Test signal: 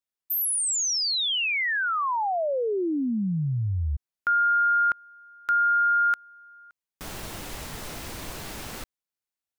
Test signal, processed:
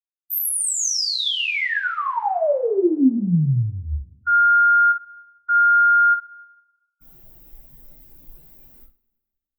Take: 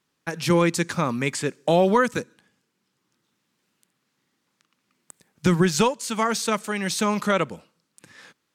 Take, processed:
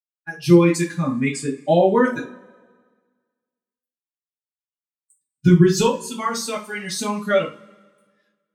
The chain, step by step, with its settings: expander on every frequency bin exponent 2; peaking EQ 260 Hz +8 dB 1.5 oct; two-slope reverb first 0.28 s, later 1.6 s, from -26 dB, DRR -6 dB; trim -3 dB

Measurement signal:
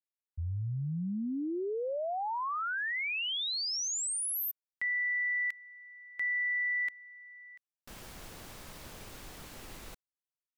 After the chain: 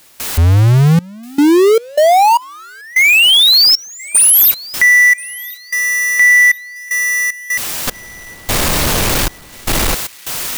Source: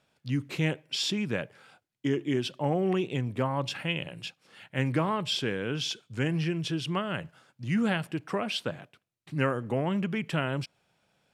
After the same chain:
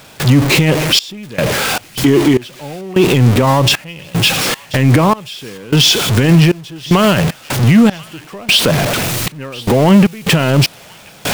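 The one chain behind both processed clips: jump at every zero crossing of -32 dBFS; dynamic bell 1.5 kHz, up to -4 dB, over -45 dBFS, Q 3; trance gate ".xxxx..xx.xx.." 76 bpm -24 dB; feedback echo behind a high-pass 1033 ms, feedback 31%, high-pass 1.9 kHz, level -21 dB; loudness maximiser +23 dB; trim -1 dB

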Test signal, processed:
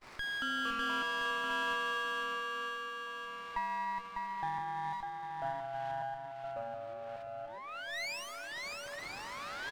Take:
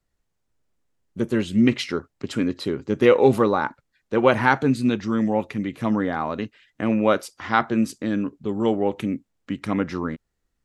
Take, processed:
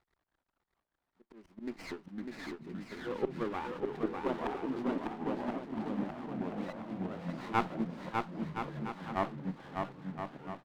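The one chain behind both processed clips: zero-crossing glitches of -8.5 dBFS; gate -16 dBFS, range -33 dB; slow attack 521 ms; cabinet simulation 220–2300 Hz, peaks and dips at 240 Hz +3 dB, 360 Hz +5 dB, 530 Hz -4 dB, 950 Hz +5 dB, 1.6 kHz -5 dB; ever faster or slower copies 190 ms, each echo -3 st, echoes 3; on a send: bouncing-ball echo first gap 600 ms, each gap 0.7×, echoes 5; on the sum: sliding maximum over 9 samples; trim -6.5 dB

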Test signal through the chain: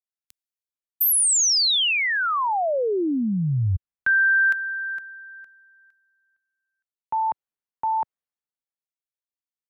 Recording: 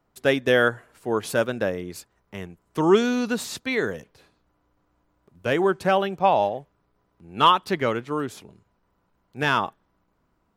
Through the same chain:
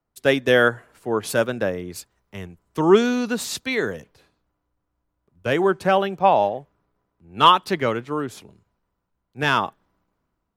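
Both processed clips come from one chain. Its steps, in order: in parallel at -2.5 dB: compression, threshold -31 dBFS; on the sum: three bands expanded up and down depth 40%

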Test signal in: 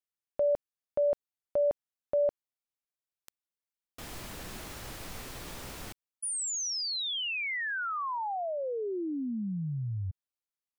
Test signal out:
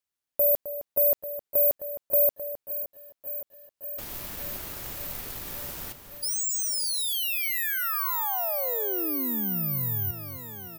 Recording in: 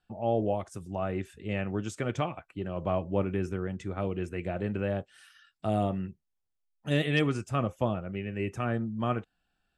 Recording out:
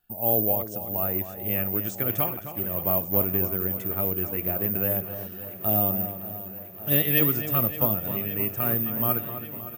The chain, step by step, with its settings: careless resampling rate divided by 3×, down none, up zero stuff; echo from a far wall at 45 m, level -10 dB; bit-crushed delay 569 ms, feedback 80%, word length 9-bit, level -15 dB

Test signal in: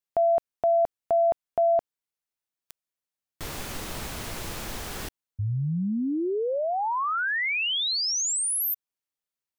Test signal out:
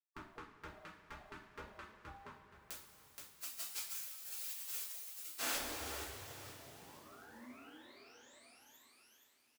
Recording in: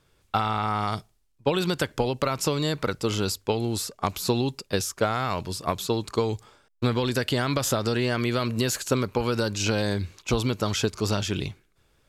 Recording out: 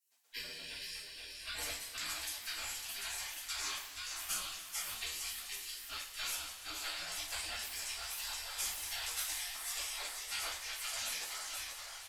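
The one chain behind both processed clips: frequency-shifting echo 474 ms, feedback 33%, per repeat +30 Hz, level -3.5 dB; spectral gate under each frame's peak -30 dB weak; two-slope reverb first 0.4 s, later 4.8 s, from -18 dB, DRR -8.5 dB; trim -4 dB

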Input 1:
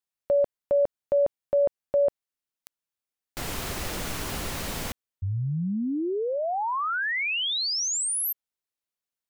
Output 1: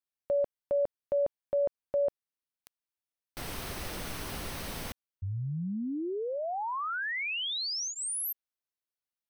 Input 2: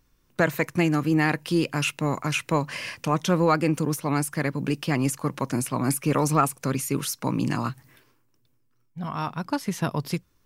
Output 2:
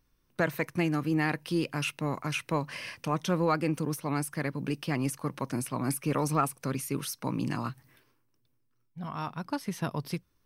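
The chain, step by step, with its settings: band-stop 7.1 kHz, Q 5.9; trim -6 dB

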